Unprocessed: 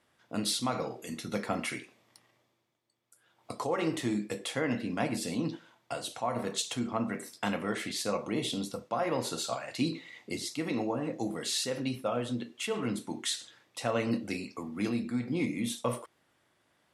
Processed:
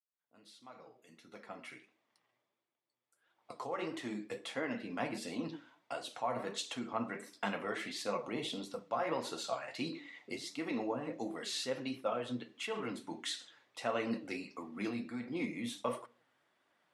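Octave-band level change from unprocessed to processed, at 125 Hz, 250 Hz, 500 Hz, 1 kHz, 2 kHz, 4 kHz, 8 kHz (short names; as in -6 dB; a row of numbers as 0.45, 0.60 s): -12.0, -8.0, -5.0, -4.0, -4.0, -7.0, -11.0 dB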